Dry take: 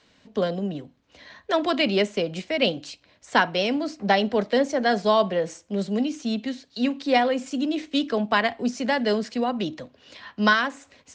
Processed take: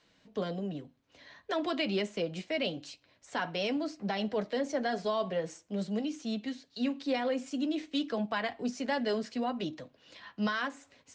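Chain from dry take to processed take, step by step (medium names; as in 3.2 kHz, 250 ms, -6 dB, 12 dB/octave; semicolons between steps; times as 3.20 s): peak limiter -15 dBFS, peak gain reduction 8.5 dB; flange 0.49 Hz, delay 5.8 ms, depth 1.8 ms, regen -50%; trim -3.5 dB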